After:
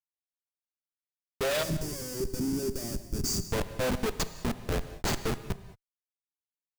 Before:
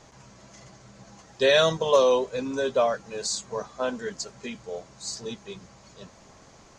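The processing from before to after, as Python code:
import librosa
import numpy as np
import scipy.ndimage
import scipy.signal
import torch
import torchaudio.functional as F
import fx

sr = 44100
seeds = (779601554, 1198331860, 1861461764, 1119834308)

y = fx.schmitt(x, sr, flips_db=-30.0)
y = fx.spec_box(y, sr, start_s=1.63, length_s=1.83, low_hz=410.0, high_hz=4500.0, gain_db=-17)
y = fx.rev_gated(y, sr, seeds[0], gate_ms=240, shape='flat', drr_db=11.5)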